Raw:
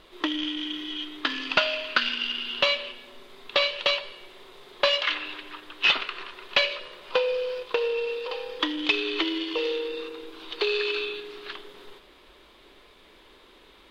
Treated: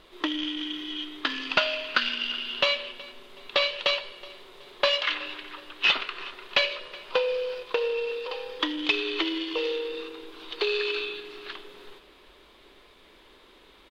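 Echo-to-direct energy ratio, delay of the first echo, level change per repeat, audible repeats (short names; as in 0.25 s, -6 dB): -20.5 dB, 0.372 s, -8.0 dB, 2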